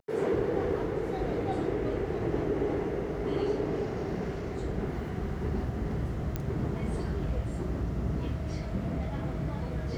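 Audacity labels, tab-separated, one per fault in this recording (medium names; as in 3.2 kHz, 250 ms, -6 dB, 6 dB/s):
6.360000	6.360000	pop -18 dBFS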